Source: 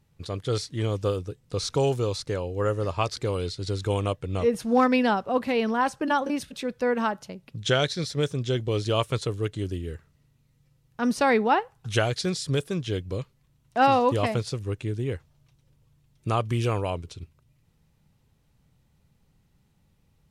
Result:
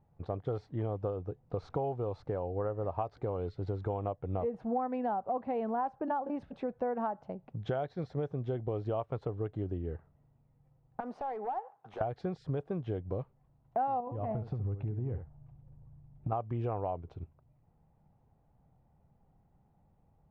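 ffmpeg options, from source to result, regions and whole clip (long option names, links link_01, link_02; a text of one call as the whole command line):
ffmpeg -i in.wav -filter_complex "[0:a]asettb=1/sr,asplit=3[link_01][link_02][link_03];[link_01]atrim=end=11.004[link_04];[link_02]atrim=start=11:end=12.01,asetpts=PTS-STARTPTS,afade=type=in:duration=0.004:curve=qsin,afade=type=out:start_time=1.006:duration=0.004:curve=qsin,highpass=410,acompressor=threshold=-33dB:ratio=6:attack=3.2:release=140:knee=1:detection=peak,aeval=exprs='0.0266*(abs(mod(val(0)/0.0266+3,4)-2)-1)':channel_layout=same[link_05];[link_03]atrim=start=12.006[link_06];[link_04][link_05]acrossfade=duration=0.004:curve1=hsin:curve2=qsin[link_07];[link_07][link_06]acrossfade=duration=0.004:curve1=qsin:curve2=hsin,asettb=1/sr,asplit=3[link_08][link_09][link_10];[link_08]atrim=end=14.004[link_11];[link_09]atrim=start=14:end=16.32,asetpts=PTS-STARTPTS,afade=type=in:duration=0.004:curve=qsin,afade=type=out:start_time=2.316:duration=0.004:curve=qsin,bass=frequency=250:gain=10,treble=frequency=4000:gain=-9,acompressor=threshold=-26dB:ratio=6:attack=3.2:release=140:knee=1:detection=peak,aecho=1:1:70:0.299,atrim=end_sample=102312[link_12];[link_10]atrim=start=16.316[link_13];[link_11][link_12]acrossfade=duration=0.004:curve1=hsin:curve2=qsin[link_14];[link_14][link_13]acrossfade=duration=0.004:curve1=qsin:curve2=hsin,lowpass=1100,equalizer=frequency=750:width_type=o:width=0.6:gain=12,acompressor=threshold=-28dB:ratio=6,volume=-3dB" out.wav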